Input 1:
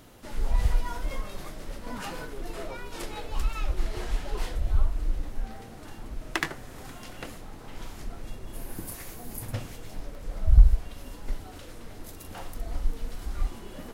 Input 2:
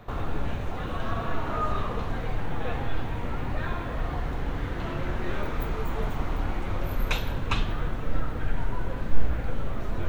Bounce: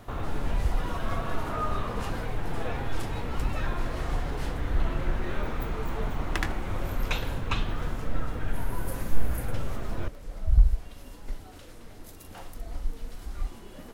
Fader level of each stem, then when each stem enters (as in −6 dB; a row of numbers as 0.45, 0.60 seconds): −3.5, −2.0 decibels; 0.00, 0.00 seconds